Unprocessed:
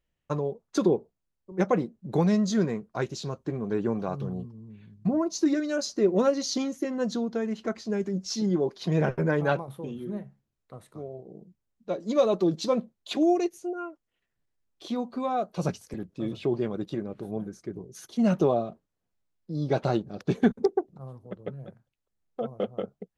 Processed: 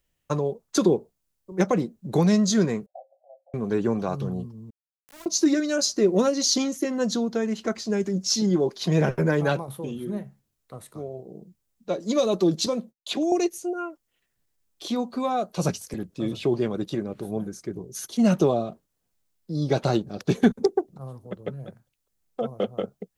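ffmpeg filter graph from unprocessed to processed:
ffmpeg -i in.wav -filter_complex "[0:a]asettb=1/sr,asplit=3[link_01][link_02][link_03];[link_01]atrim=end=2.864[link_04];[link_02]atrim=start=2.86:end=3.54,asetpts=PTS-STARTPTS,afade=type=in:duration=0.004:curve=qsin,afade=type=out:start_time=0.676:duration=0.004:curve=qsin,acompressor=threshold=-38dB:ratio=4:attack=3.2:release=140:knee=1:detection=peak,asuperpass=centerf=650:order=12:qfactor=2.5,asplit=2[link_05][link_06];[link_06]adelay=17,volume=-13dB[link_07];[link_05][link_07]amix=inputs=2:normalize=0,atrim=end_sample=29988[link_08];[link_03]atrim=start=3.536[link_09];[link_04][link_08]acrossfade=duration=0.004:curve1=hsin:curve2=qsin[link_10];[link_10][link_09]acrossfade=duration=0.004:curve1=qsin:curve2=hsin,asettb=1/sr,asplit=3[link_11][link_12][link_13];[link_11]atrim=end=4.704[link_14];[link_12]atrim=start=4.7:end=5.26,asetpts=PTS-STARTPTS,afade=type=in:duration=0.004:curve=qsin,afade=type=out:start_time=0.556:duration=0.004:curve=qsin,highpass=150,aderivative,aeval=exprs='val(0)*gte(abs(val(0)),0.00473)':channel_layout=same[link_15];[link_13]atrim=start=5.256[link_16];[link_14][link_15]acrossfade=duration=0.004:curve1=hsin:curve2=qsin[link_17];[link_17][link_16]acrossfade=duration=0.004:curve1=qsin:curve2=hsin,asettb=1/sr,asplit=3[link_18][link_19][link_20];[link_18]atrim=end=12.664[link_21];[link_19]atrim=start=12.66:end=13.32,asetpts=PTS-STARTPTS,afade=type=in:duration=0.004:curve=qsin,afade=type=out:start_time=0.656:duration=0.004:curve=qsin,acrossover=split=170|530|4800[link_22][link_23][link_24][link_25];[link_22]acompressor=threshold=-48dB:ratio=3[link_26];[link_23]acompressor=threshold=-31dB:ratio=3[link_27];[link_24]acompressor=threshold=-36dB:ratio=3[link_28];[link_25]acompressor=threshold=-53dB:ratio=3[link_29];[link_26][link_27][link_28][link_29]amix=inputs=4:normalize=0,agate=range=-33dB:threshold=-54dB:ratio=3:release=100:detection=peak[link_30];[link_20]atrim=start=13.316[link_31];[link_21][link_30]acrossfade=duration=0.004:curve1=hsin:curve2=qsin[link_32];[link_32][link_31]acrossfade=duration=0.004:curve1=qsin:curve2=hsin,highshelf=frequency=4700:gain=11,acrossover=split=400|3000[link_33][link_34][link_35];[link_34]acompressor=threshold=-26dB:ratio=6[link_36];[link_33][link_36][link_35]amix=inputs=3:normalize=0,volume=3.5dB" out.wav

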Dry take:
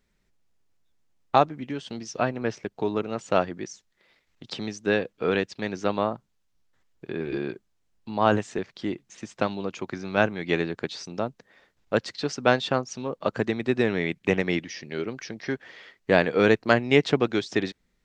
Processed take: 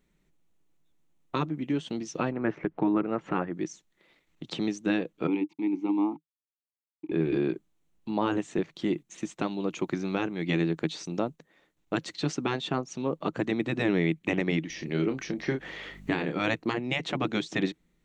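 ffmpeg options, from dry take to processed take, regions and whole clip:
ffmpeg -i in.wav -filter_complex "[0:a]asettb=1/sr,asplit=3[link_01][link_02][link_03];[link_01]atrim=end=2.324[link_04];[link_02]atrim=start=2.32:end=3.52,asetpts=PTS-STARTPTS,afade=type=in:duration=0.004:curve=qsin,afade=type=out:start_time=1.196:duration=0.004:curve=qsin,lowpass=frequency=1700:width_type=q:width=1.6,acompressor=mode=upward:threshold=-28dB:ratio=2.5:attack=3.2:release=140:knee=2.83:detection=peak[link_05];[link_03]atrim=start=3.516[link_06];[link_04][link_05]acrossfade=duration=0.004:curve1=hsin:curve2=qsin[link_07];[link_07][link_06]acrossfade=duration=0.004:curve1=qsin:curve2=hsin,asettb=1/sr,asplit=3[link_08][link_09][link_10];[link_08]atrim=end=5.274[link_11];[link_09]atrim=start=5.27:end=7.12,asetpts=PTS-STARTPTS,afade=type=in:duration=0.004:curve=qsin,afade=type=out:start_time=1.846:duration=0.004:curve=qsin,aeval=exprs='val(0)*gte(abs(val(0)),0.00447)':channel_layout=same,acontrast=33,asplit=3[link_12][link_13][link_14];[link_12]bandpass=frequency=300:width_type=q:width=8,volume=0dB[link_15];[link_13]bandpass=frequency=870:width_type=q:width=8,volume=-6dB[link_16];[link_14]bandpass=frequency=2240:width_type=q:width=8,volume=-9dB[link_17];[link_15][link_16][link_17]amix=inputs=3:normalize=0[link_18];[link_10]atrim=start=7.116[link_19];[link_11][link_18]acrossfade=duration=0.004:curve1=hsin:curve2=qsin[link_20];[link_20][link_19]acrossfade=duration=0.004:curve1=qsin:curve2=hsin,asettb=1/sr,asplit=3[link_21][link_22][link_23];[link_21]atrim=end=8.754[link_24];[link_22]atrim=start=8.75:end=12.32,asetpts=PTS-STARTPTS,afade=type=in:duration=0.004:curve=qsin,afade=type=out:start_time=3.566:duration=0.004:curve=qsin,agate=range=-6dB:threshold=-55dB:ratio=16:release=100:detection=peak,highshelf=frequency=5000:gain=5[link_25];[link_23]atrim=start=12.316[link_26];[link_24][link_25]acrossfade=duration=0.004:curve1=hsin:curve2=qsin[link_27];[link_27][link_26]acrossfade=duration=0.004:curve1=qsin:curve2=hsin,asettb=1/sr,asplit=3[link_28][link_29][link_30];[link_28]atrim=end=14.704[link_31];[link_29]atrim=start=14.7:end=16.38,asetpts=PTS-STARTPTS,afade=type=in:duration=0.004:curve=qsin,afade=type=out:start_time=1.676:duration=0.004:curve=qsin,aeval=exprs='val(0)+0.00112*(sin(2*PI*50*n/s)+sin(2*PI*2*50*n/s)/2+sin(2*PI*3*50*n/s)/3+sin(2*PI*4*50*n/s)/4+sin(2*PI*5*50*n/s)/5)':channel_layout=same,acompressor=mode=upward:threshold=-31dB:ratio=2.5:attack=3.2:release=140:knee=2.83:detection=peak,asplit=2[link_32][link_33];[link_33]adelay=30,volume=-8dB[link_34];[link_32][link_34]amix=inputs=2:normalize=0,atrim=end_sample=74088[link_35];[link_30]atrim=start=16.376[link_36];[link_31][link_35]acrossfade=duration=0.004:curve1=hsin:curve2=qsin[link_37];[link_37][link_36]acrossfade=duration=0.004:curve1=qsin:curve2=hsin,afftfilt=real='re*lt(hypot(re,im),0.447)':imag='im*lt(hypot(re,im),0.447)':win_size=1024:overlap=0.75,equalizer=frequency=100:width_type=o:width=0.33:gain=-10,equalizer=frequency=160:width_type=o:width=0.33:gain=9,equalizer=frequency=315:width_type=o:width=0.33:gain=9,equalizer=frequency=1600:width_type=o:width=0.33:gain=-4,equalizer=frequency=5000:width_type=o:width=0.33:gain=-9,alimiter=limit=-15dB:level=0:latency=1:release=356" out.wav

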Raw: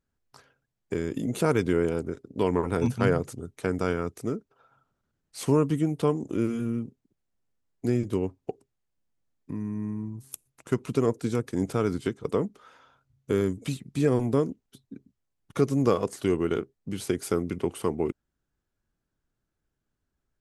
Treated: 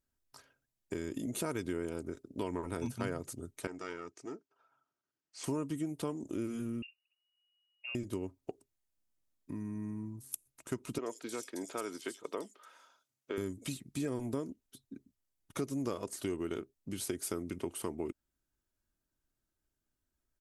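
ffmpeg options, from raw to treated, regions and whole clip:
ffmpeg -i in.wav -filter_complex "[0:a]asettb=1/sr,asplit=3[link_01][link_02][link_03];[link_01]atrim=end=3.674[link_04];[link_02]atrim=start=3.67:end=5.44,asetpts=PTS-STARTPTS,afade=type=in:duration=0.004:curve=qsin,afade=type=out:start_time=1.766:duration=0.004:curve=qsin,aeval=exprs='(tanh(7.94*val(0)+0.65)-tanh(0.65))/7.94':channel_layout=same,highpass=210,equalizer=frequency=220:width_type=q:width=4:gain=-10,equalizer=frequency=540:width_type=q:width=4:gain=-6,equalizer=frequency=3800:width_type=q:width=4:gain=-6,lowpass=frequency=6600:width=0.5412,lowpass=frequency=6600:width=1.3066[link_05];[link_03]atrim=start=5.436[link_06];[link_04][link_05]acrossfade=duration=0.004:curve1=hsin:curve2=qsin[link_07];[link_07][link_06]acrossfade=duration=0.004:curve1=qsin:curve2=hsin,asettb=1/sr,asplit=3[link_08][link_09][link_10];[link_08]atrim=end=6.824[link_11];[link_09]atrim=start=6.82:end=7.95,asetpts=PTS-STARTPTS,afade=type=in:duration=0.004:curve=qsin,afade=type=out:start_time=1.126:duration=0.004:curve=qsin,equalizer=frequency=280:width_type=o:width=1.8:gain=-12.5,acompressor=threshold=-36dB:ratio=3:attack=3.2:release=140:knee=1:detection=peak,lowpass=frequency=2500:width_type=q:width=0.5098,lowpass=frequency=2500:width_type=q:width=0.6013,lowpass=frequency=2500:width_type=q:width=0.9,lowpass=frequency=2500:width_type=q:width=2.563,afreqshift=-2900[link_12];[link_10]atrim=start=7.946[link_13];[link_11][link_12]acrossfade=duration=0.004:curve1=hsin:curve2=qsin[link_14];[link_14][link_13]acrossfade=duration=0.004:curve1=qsin:curve2=hsin,asettb=1/sr,asplit=3[link_15][link_16][link_17];[link_15]atrim=end=10.984[link_18];[link_16]atrim=start=10.98:end=13.38,asetpts=PTS-STARTPTS,afade=type=in:duration=0.004:curve=qsin,afade=type=out:start_time=2.396:duration=0.004:curve=qsin,highpass=420,equalizer=frequency=5200:width_type=o:width=1.7:gain=3,acrossover=split=4000[link_19][link_20];[link_20]adelay=80[link_21];[link_19][link_21]amix=inputs=2:normalize=0,atrim=end_sample=105840[link_22];[link_17]atrim=start=13.376[link_23];[link_18][link_22]acrossfade=duration=0.004:curve1=hsin:curve2=qsin[link_24];[link_24][link_23]acrossfade=duration=0.004:curve1=qsin:curve2=hsin,aemphasis=mode=production:type=cd,aecho=1:1:3.2:0.32,acompressor=threshold=-29dB:ratio=2.5,volume=-6dB" out.wav

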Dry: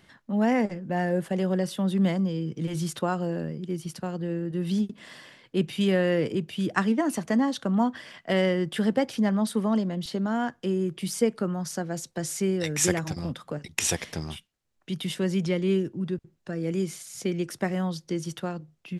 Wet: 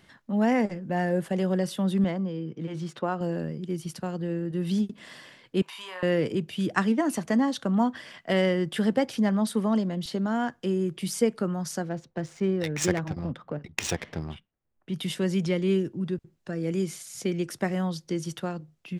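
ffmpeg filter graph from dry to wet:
ffmpeg -i in.wav -filter_complex "[0:a]asettb=1/sr,asplit=3[link_01][link_02][link_03];[link_01]atrim=end=2.044[link_04];[link_02]atrim=start=2.04:end=3.21,asetpts=PTS-STARTPTS,afade=type=in:duration=0.004:curve=qsin,afade=type=out:start_time=1.166:duration=0.004:curve=qsin,highpass=frequency=230:poles=1,highshelf=frequency=3100:gain=-9,adynamicsmooth=sensitivity=7.5:basefreq=5600[link_05];[link_03]atrim=start=3.206[link_06];[link_04][link_05]acrossfade=duration=0.004:curve1=hsin:curve2=qsin[link_07];[link_07][link_06]acrossfade=duration=0.004:curve1=qsin:curve2=hsin,asettb=1/sr,asplit=3[link_08][link_09][link_10];[link_08]atrim=end=5.624[link_11];[link_09]atrim=start=5.62:end=6.03,asetpts=PTS-STARTPTS,afade=type=in:duration=0.004:curve=qsin,afade=type=out:start_time=0.406:duration=0.004:curve=qsin,highpass=frequency=1000:width_type=q:width=10,acompressor=threshold=-41dB:ratio=2.5:attack=3.2:release=140:knee=1:detection=peak,asplit=2[link_12][link_13];[link_13]adelay=38,volume=-7dB[link_14];[link_12][link_14]amix=inputs=2:normalize=0,atrim=end_sample=18081[link_15];[link_10]atrim=start=6.026[link_16];[link_11][link_15]acrossfade=duration=0.004:curve1=hsin:curve2=qsin[link_17];[link_17][link_16]acrossfade=duration=0.004:curve1=qsin:curve2=hsin,asettb=1/sr,asplit=3[link_18][link_19][link_20];[link_18]atrim=end=11.894[link_21];[link_19]atrim=start=11.89:end=14.94,asetpts=PTS-STARTPTS,afade=type=in:duration=0.004:curve=qsin,afade=type=out:start_time=3.046:duration=0.004:curve=qsin,highshelf=frequency=2700:gain=-2.5,adynamicsmooth=sensitivity=4.5:basefreq=1900[link_22];[link_20]atrim=start=14.936[link_23];[link_21][link_22]acrossfade=duration=0.004:curve1=hsin:curve2=qsin[link_24];[link_24][link_23]acrossfade=duration=0.004:curve1=qsin:curve2=hsin" out.wav

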